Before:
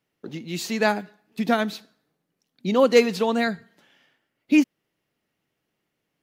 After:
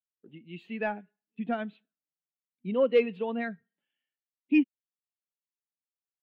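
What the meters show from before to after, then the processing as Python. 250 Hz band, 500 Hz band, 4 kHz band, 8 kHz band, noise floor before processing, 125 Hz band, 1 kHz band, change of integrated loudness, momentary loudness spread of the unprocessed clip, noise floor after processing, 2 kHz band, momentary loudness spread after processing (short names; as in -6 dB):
-7.0 dB, -7.0 dB, -15.5 dB, under -40 dB, -79 dBFS, -10.0 dB, -11.0 dB, -6.5 dB, 20 LU, under -85 dBFS, -9.5 dB, 18 LU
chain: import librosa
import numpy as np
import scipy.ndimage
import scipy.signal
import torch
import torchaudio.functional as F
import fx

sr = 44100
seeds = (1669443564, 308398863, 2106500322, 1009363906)

y = fx.high_shelf_res(x, sr, hz=4000.0, db=-11.0, q=3.0)
y = 10.0 ** (-9.0 / 20.0) * np.tanh(y / 10.0 ** (-9.0 / 20.0))
y = fx.spectral_expand(y, sr, expansion=1.5)
y = y * 10.0 ** (-4.0 / 20.0)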